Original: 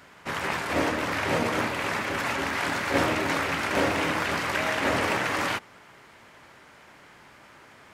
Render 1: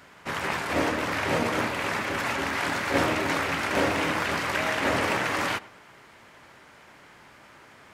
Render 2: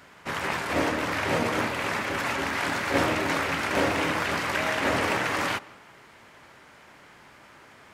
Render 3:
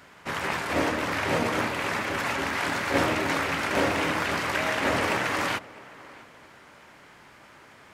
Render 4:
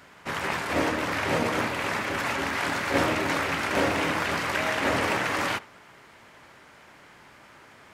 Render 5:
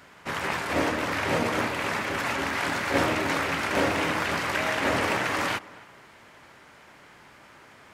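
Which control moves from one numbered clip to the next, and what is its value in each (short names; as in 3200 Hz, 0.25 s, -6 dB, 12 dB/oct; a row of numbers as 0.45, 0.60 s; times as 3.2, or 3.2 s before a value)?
tape echo, time: 112, 166, 662, 73, 264 ms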